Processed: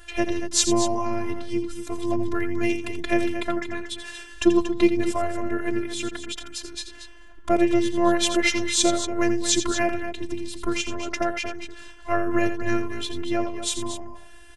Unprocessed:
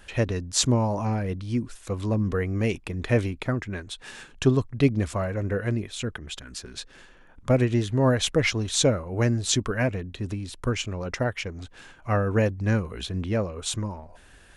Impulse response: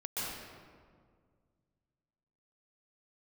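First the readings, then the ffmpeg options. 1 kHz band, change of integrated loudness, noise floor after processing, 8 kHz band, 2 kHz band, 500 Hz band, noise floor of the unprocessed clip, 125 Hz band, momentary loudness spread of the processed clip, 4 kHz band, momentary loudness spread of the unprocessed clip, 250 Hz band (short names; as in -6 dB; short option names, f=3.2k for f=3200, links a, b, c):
+5.0 dB, +1.0 dB, -43 dBFS, +3.5 dB, +3.0 dB, +1.5 dB, -52 dBFS, -13.0 dB, 14 LU, +3.0 dB, 14 LU, +3.0 dB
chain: -af "afftfilt=real='hypot(re,im)*cos(PI*b)':imag='0':win_size=512:overlap=0.75,aecho=1:1:84.55|233.2:0.316|0.316,volume=6dB"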